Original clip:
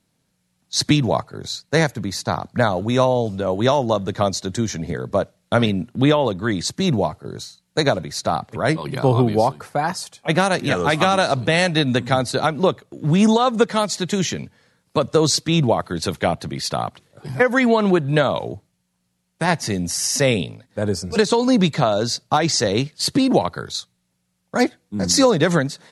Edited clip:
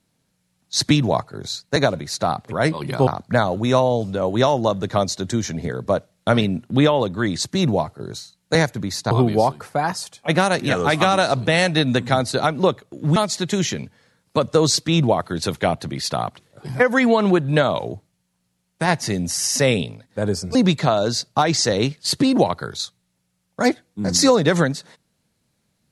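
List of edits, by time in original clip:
0:01.76–0:02.32: swap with 0:07.80–0:09.11
0:13.16–0:13.76: remove
0:21.15–0:21.50: remove

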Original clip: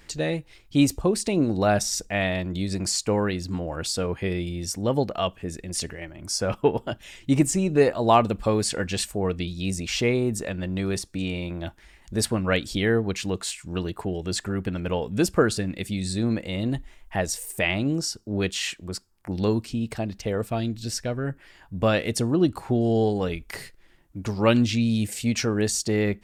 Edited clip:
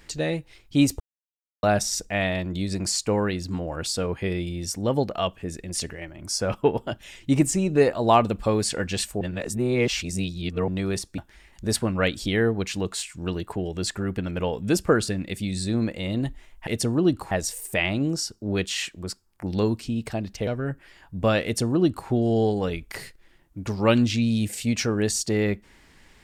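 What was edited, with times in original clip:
0:01.00–0:01.63: silence
0:09.21–0:10.68: reverse
0:11.18–0:11.67: remove
0:20.32–0:21.06: remove
0:22.03–0:22.67: duplicate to 0:17.16

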